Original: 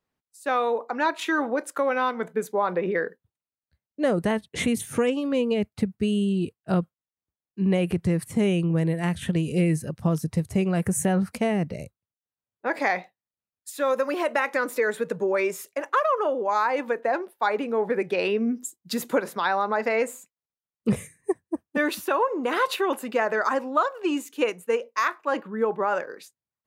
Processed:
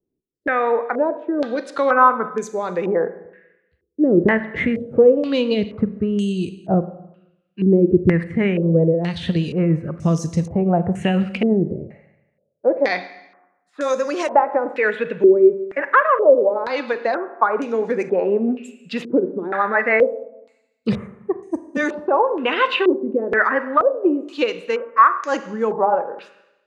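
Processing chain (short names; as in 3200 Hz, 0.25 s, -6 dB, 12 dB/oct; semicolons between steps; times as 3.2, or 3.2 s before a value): rotary speaker horn 0.9 Hz, later 6.3 Hz, at 7.81; Schroeder reverb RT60 0.98 s, combs from 32 ms, DRR 11.5 dB; stepped low-pass 2.1 Hz 360–6400 Hz; gain +5 dB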